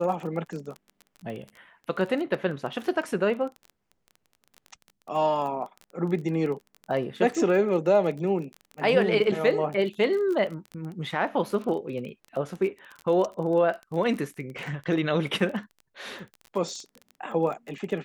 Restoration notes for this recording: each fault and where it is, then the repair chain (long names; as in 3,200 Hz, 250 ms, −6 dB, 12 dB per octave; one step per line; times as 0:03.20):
surface crackle 23 per second −33 dBFS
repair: click removal